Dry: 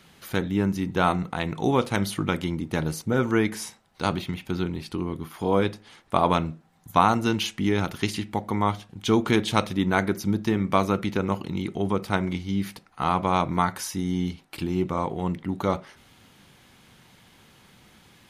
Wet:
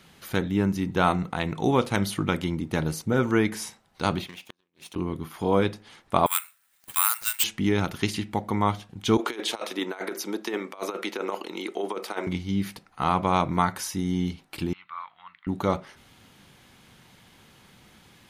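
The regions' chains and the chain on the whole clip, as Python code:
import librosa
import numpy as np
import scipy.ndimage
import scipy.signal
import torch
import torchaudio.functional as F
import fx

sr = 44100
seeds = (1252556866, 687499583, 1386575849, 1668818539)

y = fx.chain(x, sr, fx.lower_of_two(delay_ms=0.31),
    fx.highpass(hz=1200.0, slope=6),
    fx.gate_flip(shuts_db=-27.0, range_db=-38), at=(4.27, 4.96))
y = fx.chain(y, sr, fx.cheby2_highpass(hz=240.0, order=4, stop_db=80),
    fx.resample_bad(factor=4, down='none', up='zero_stuff'), at=(6.26, 7.44))
y = fx.chain(y, sr, fx.highpass(hz=350.0, slope=24),
    fx.over_compress(threshold_db=-29.0, ratio=-0.5), at=(9.17, 12.27))
y = fx.chain(y, sr, fx.ellip_bandpass(low_hz=1200.0, high_hz=4200.0, order=3, stop_db=50),
    fx.tilt_eq(slope=-4.0), at=(14.73, 15.47))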